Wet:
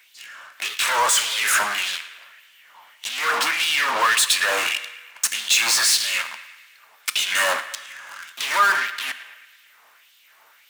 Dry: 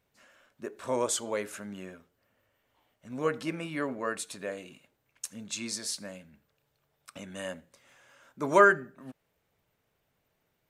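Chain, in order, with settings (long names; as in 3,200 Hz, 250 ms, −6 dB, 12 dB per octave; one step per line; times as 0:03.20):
in parallel at −6 dB: fuzz pedal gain 48 dB, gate −51 dBFS
on the sum: downward compressor, threshold −24 dBFS, peak gain reduction 12.5 dB
auto-filter high-pass sine 1.7 Hz 980–3,400 Hz
power curve on the samples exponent 0.7
high-pass filter 97 Hz 12 dB per octave
on a send: feedback echo with a band-pass in the loop 110 ms, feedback 62%, band-pass 2,000 Hz, level −14 dB
on the sum: coupled-rooms reverb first 0.96 s, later 2.9 s, from −26 dB, DRR 13.5 dB
level +3 dB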